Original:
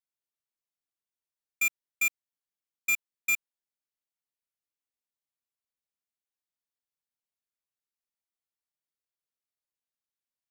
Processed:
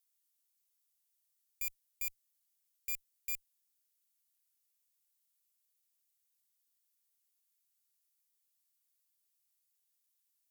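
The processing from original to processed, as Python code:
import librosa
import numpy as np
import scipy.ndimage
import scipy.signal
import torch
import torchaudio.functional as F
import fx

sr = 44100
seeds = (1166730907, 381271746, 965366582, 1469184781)

y = F.preemphasis(torch.from_numpy(x), 0.97).numpy()
y = fx.tube_stage(y, sr, drive_db=43.0, bias=0.25)
y = y * librosa.db_to_amplitude(12.0)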